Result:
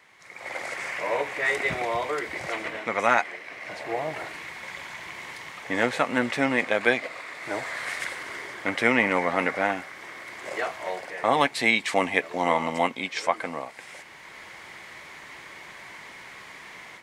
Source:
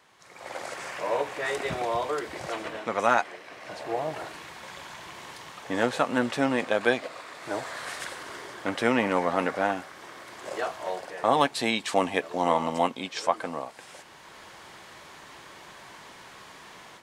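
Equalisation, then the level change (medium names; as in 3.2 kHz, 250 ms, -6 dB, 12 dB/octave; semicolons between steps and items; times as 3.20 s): peaking EQ 2.1 kHz +12 dB 0.41 oct; 0.0 dB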